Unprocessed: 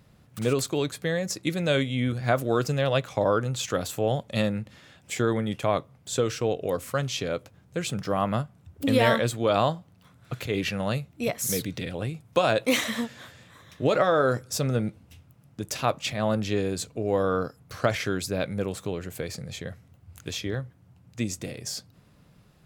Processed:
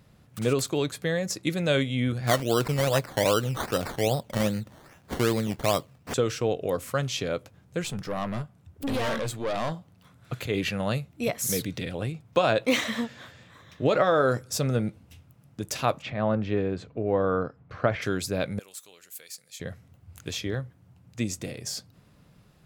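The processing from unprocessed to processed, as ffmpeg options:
-filter_complex "[0:a]asettb=1/sr,asplit=3[a][b][c];[a]atrim=end=2.274[d];[b]atrim=start=2.27:end=6.14,asetpts=PTS-STARTPTS,afade=t=in:d=0.004:c=qsin,afade=t=out:st=3.866:d=0.004:c=qsin,acrusher=samples=14:mix=1:aa=0.000001:lfo=1:lforange=8.4:lforate=2.5[e];[c]atrim=start=6.136[f];[d][e]acrossfade=d=0.004:c1=hsin:c2=qsin[g];[g][f]acrossfade=d=0.004:c1=qsin:c2=hsin,asettb=1/sr,asplit=3[h][i][j];[h]atrim=end=7.834[k];[i]atrim=start=7.83:end=9.72,asetpts=PTS-STARTPTS,afade=t=in:d=0.004:c=qsin,afade=t=out:st=1.886:d=0.004:c=qsin,aeval=exprs='(tanh(17.8*val(0)+0.45)-tanh(0.45))/17.8':c=same[l];[j]atrim=start=9.716[m];[k][l]acrossfade=d=0.004:c1=hsin:c2=qsin[n];[n][m]acrossfade=d=0.004:c1=qsin:c2=hsin,asettb=1/sr,asplit=3[o][p][q];[o]atrim=end=10.374[r];[p]atrim=start=10.37:end=10.9,asetpts=PTS-STARTPTS,afade=t=in:d=0.004:c=qsin,afade=t=out:st=0.526:d=0.004:c=qsin,bandreject=f=5.5k:w=12[s];[q]atrim=start=10.896[t];[r][s]acrossfade=d=0.004:c1=hsin:c2=qsin[u];[u][t]acrossfade=d=0.004:c1=qsin:c2=hsin,asettb=1/sr,asplit=3[v][w][x];[v]atrim=end=12.124[y];[w]atrim=start=12.12:end=14.07,asetpts=PTS-STARTPTS,afade=t=in:d=0.004:c=qsin,afade=t=out:st=1.946:d=0.004:c=qsin,equalizer=f=11k:w=0.83:g=-8.5[z];[x]atrim=start=14.066[aa];[y][z]acrossfade=d=0.004:c1=hsin:c2=qsin[ab];[ab][aa]acrossfade=d=0.004:c1=qsin:c2=hsin,asplit=3[ac][ad][ae];[ac]afade=t=out:st=16.01:d=0.02[af];[ad]lowpass=2.1k,afade=t=in:st=16.01:d=0.02,afade=t=out:st=18.01:d=0.02[ag];[ae]afade=t=in:st=18.01:d=0.02[ah];[af][ag][ah]amix=inputs=3:normalize=0,asettb=1/sr,asplit=3[ai][aj][ak];[ai]atrim=end=18.594[al];[aj]atrim=start=18.59:end=19.6,asetpts=PTS-STARTPTS,afade=t=in:d=0.004:c=qsin,afade=t=out:st=1.006:d=0.004:c=qsin,aderivative[am];[ak]atrim=start=19.596[an];[al][am]acrossfade=d=0.004:c1=hsin:c2=qsin[ao];[ao][an]acrossfade=d=0.004:c1=qsin:c2=hsin"

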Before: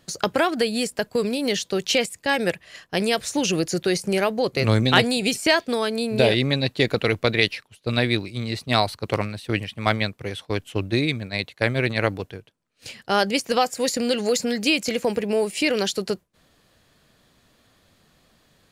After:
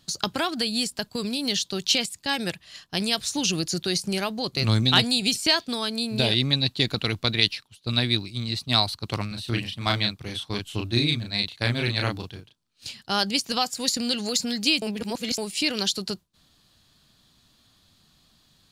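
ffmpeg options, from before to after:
-filter_complex "[0:a]asettb=1/sr,asplit=3[a][b][c];[a]atrim=end=9.284[d];[b]atrim=start=9.28:end=12.89,asetpts=PTS-STARTPTS,afade=t=in:d=0.004:c=qsin,afade=t=out:st=3.606:d=0.004:c=qsin,asplit=2[e][f];[f]adelay=34,volume=-3dB[g];[e][g]amix=inputs=2:normalize=0,atrim=end_sample=159201[h];[c]atrim=start=12.886[i];[d][h]acrossfade=d=0.004:c1=hsin:c2=qsin[j];[j][i]acrossfade=d=0.004:c1=qsin:c2=hsin,asplit=3[k][l][m];[k]atrim=end=14.822[n];[l]atrim=start=14.818:end=15.382,asetpts=PTS-STARTPTS,areverse[o];[m]atrim=start=15.378[p];[n][o]acrossfade=d=0.004:c1=hsin:c2=hsin[q];[q][p]acrossfade=d=0.004:c1=hsin:c2=hsin,equalizer=f=500:t=o:w=1:g=-11,equalizer=f=2k:t=o:w=1:g=-7,equalizer=f=4k:t=o:w=1:g=7,volume=-1dB"

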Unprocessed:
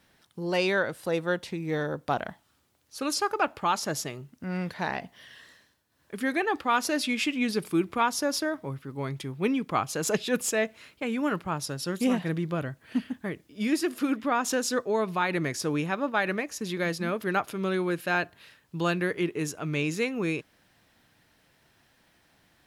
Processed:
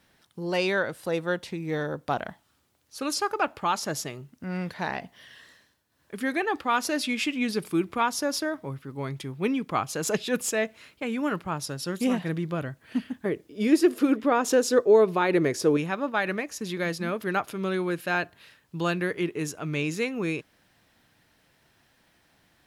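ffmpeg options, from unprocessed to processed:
-filter_complex "[0:a]asettb=1/sr,asplit=3[a][b][c];[a]atrim=end=13.254[d];[b]atrim=start=13.25:end=15.77,asetpts=PTS-STARTPTS,afade=t=in:d=0.004:c=qsin,afade=t=out:st=2.516:d=0.004:c=qsin,equalizer=f=420:t=o:w=0.98:g=11[e];[c]atrim=start=15.766[f];[d][e]acrossfade=d=0.004:c1=hsin:c2=qsin[g];[g][f]acrossfade=d=0.004:c1=qsin:c2=hsin"

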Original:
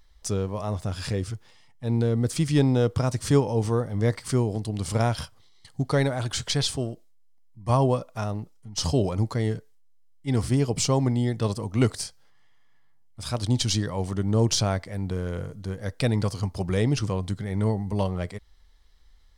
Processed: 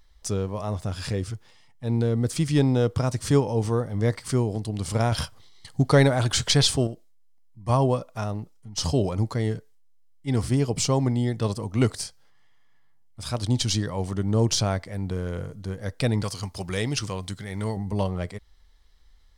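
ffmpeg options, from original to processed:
-filter_complex "[0:a]asettb=1/sr,asplit=3[a][b][c];[a]atrim=end=16.234[d];[b]atrim=start=16.23:end=17.77,asetpts=PTS-STARTPTS,afade=t=in:d=0.004:c=qsin,afade=t=out:st=1.536:d=0.004:c=qsin,tiltshelf=f=1.1k:g=-5.5[e];[c]atrim=start=17.766[f];[d][e]acrossfade=d=0.004:c1=hsin:c2=qsin[g];[g][f]acrossfade=d=0.004:c1=qsin:c2=hsin,asplit=3[h][i][j];[h]atrim=end=5.122[k];[i]atrim=start=5.118:end=6.872,asetpts=PTS-STARTPTS,volume=5.5dB[l];[j]atrim=start=6.868[m];[k][l]acrossfade=d=0.004:c1=hsin:c2=hsin[n];[n][m]acrossfade=d=0.004:c1=hsin:c2=hsin"

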